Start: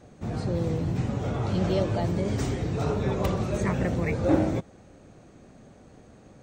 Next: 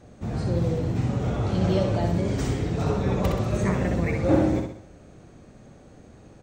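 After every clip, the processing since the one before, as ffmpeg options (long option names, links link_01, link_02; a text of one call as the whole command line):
ffmpeg -i in.wav -filter_complex "[0:a]lowshelf=frequency=110:gain=4.5,asplit=2[link_01][link_02];[link_02]aecho=0:1:64|128|192|256|320|384:0.562|0.253|0.114|0.0512|0.0231|0.0104[link_03];[link_01][link_03]amix=inputs=2:normalize=0" out.wav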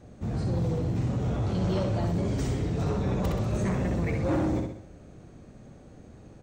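ffmpeg -i in.wav -filter_complex "[0:a]lowshelf=frequency=400:gain=4.5,acrossover=split=3300[link_01][link_02];[link_01]asoftclip=type=tanh:threshold=-18.5dB[link_03];[link_03][link_02]amix=inputs=2:normalize=0,volume=-3.5dB" out.wav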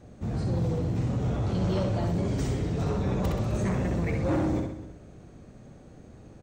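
ffmpeg -i in.wav -filter_complex "[0:a]asplit=2[link_01][link_02];[link_02]adelay=256.6,volume=-16dB,highshelf=frequency=4000:gain=-5.77[link_03];[link_01][link_03]amix=inputs=2:normalize=0" out.wav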